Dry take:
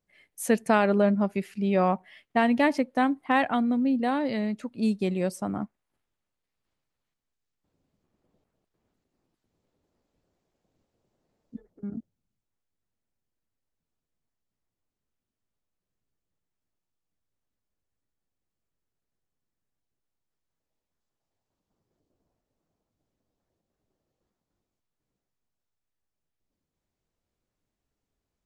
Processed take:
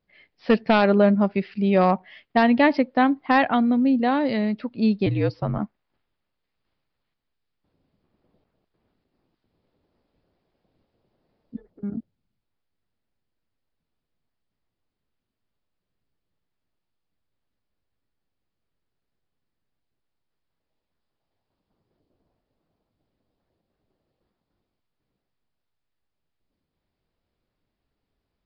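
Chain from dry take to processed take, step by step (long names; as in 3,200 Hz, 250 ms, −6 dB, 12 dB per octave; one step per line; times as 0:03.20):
wave folding −13.5 dBFS
downsampling to 11,025 Hz
0:05.06–0:05.59: frequency shifter −64 Hz
level +5 dB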